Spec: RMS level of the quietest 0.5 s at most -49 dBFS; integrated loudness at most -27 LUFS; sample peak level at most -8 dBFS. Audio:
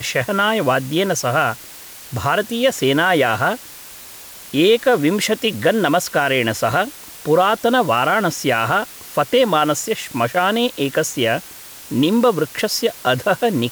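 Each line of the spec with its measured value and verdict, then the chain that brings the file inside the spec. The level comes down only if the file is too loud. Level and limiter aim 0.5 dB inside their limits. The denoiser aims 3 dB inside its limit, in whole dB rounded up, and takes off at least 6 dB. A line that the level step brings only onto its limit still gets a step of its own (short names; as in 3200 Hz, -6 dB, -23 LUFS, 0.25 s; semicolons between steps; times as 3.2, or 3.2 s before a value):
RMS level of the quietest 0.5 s -38 dBFS: fail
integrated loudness -17.5 LUFS: fail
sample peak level -5.0 dBFS: fail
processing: denoiser 6 dB, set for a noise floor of -38 dBFS; gain -10 dB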